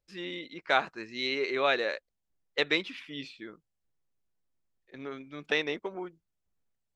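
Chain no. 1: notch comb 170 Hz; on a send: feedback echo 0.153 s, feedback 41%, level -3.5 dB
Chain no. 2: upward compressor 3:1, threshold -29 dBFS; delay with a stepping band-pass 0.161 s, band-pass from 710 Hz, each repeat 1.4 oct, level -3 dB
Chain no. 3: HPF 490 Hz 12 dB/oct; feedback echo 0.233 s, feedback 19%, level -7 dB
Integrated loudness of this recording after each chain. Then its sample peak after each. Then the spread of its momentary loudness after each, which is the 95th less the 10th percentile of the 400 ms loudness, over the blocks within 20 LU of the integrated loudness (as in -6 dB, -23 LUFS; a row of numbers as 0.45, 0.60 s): -31.0, -31.0, -31.5 LUFS; -10.5, -9.0, -12.0 dBFS; 16, 15, 18 LU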